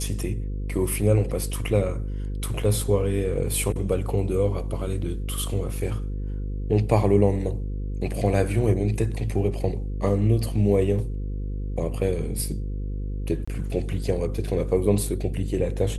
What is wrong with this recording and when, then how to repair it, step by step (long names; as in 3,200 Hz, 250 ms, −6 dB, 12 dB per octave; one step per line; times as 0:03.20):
mains buzz 50 Hz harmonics 10 −29 dBFS
0:13.45–0:13.47: drop-out 25 ms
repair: hum removal 50 Hz, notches 10
repair the gap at 0:13.45, 25 ms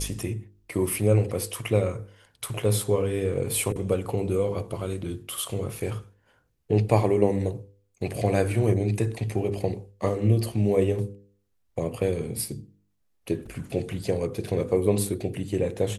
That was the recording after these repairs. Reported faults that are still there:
none of them is left